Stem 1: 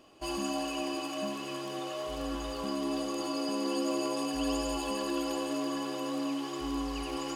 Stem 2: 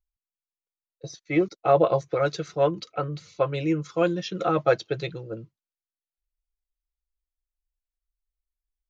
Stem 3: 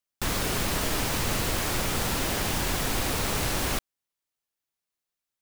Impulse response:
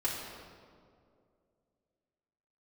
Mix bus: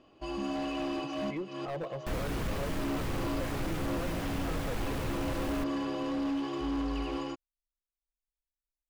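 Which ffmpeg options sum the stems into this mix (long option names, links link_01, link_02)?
-filter_complex "[0:a]lowpass=3900,dynaudnorm=framelen=340:gausssize=3:maxgain=4.5dB,volume=-4dB[link_01];[1:a]asoftclip=type=hard:threshold=-18dB,volume=-16.5dB,asplit=2[link_02][link_03];[2:a]adelay=1850,volume=-8dB[link_04];[link_03]apad=whole_len=324479[link_05];[link_01][link_05]sidechaincompress=threshold=-51dB:ratio=10:attack=12:release=196[link_06];[link_06][link_02][link_04]amix=inputs=3:normalize=0,acrossover=split=3000[link_07][link_08];[link_08]acompressor=threshold=-47dB:ratio=4:attack=1:release=60[link_09];[link_07][link_09]amix=inputs=2:normalize=0,asoftclip=type=hard:threshold=-32dB,lowshelf=frequency=310:gain=6"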